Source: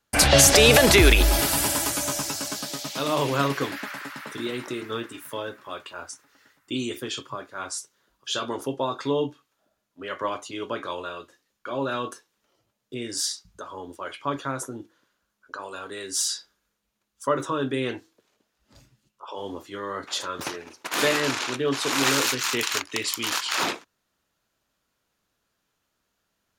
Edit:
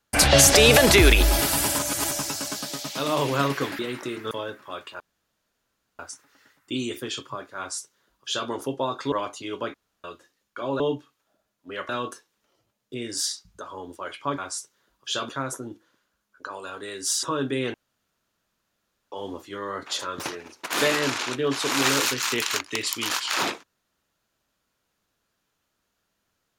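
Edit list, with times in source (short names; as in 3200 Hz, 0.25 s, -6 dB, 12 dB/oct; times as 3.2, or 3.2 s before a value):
1.79–2.11 reverse
3.79–4.44 cut
4.96–5.3 cut
5.99 insert room tone 0.99 s
7.58–8.49 copy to 14.38
9.12–10.21 move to 11.89
10.83–11.13 room tone
16.32–17.44 cut
17.95–19.33 room tone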